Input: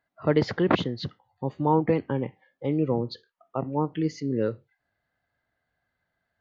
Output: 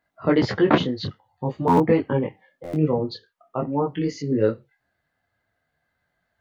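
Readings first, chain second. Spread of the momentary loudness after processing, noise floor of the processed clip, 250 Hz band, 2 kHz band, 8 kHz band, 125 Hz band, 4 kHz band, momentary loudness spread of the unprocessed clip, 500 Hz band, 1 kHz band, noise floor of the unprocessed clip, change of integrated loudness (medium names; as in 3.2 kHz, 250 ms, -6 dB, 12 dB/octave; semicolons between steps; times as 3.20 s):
13 LU, -77 dBFS, +4.5 dB, +4.5 dB, no reading, +3.0 dB, +4.0 dB, 12 LU, +4.0 dB, +4.5 dB, -81 dBFS, +4.5 dB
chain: buffer glitch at 1.67/2.63 s, samples 512, times 8; detune thickener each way 16 cents; trim +8 dB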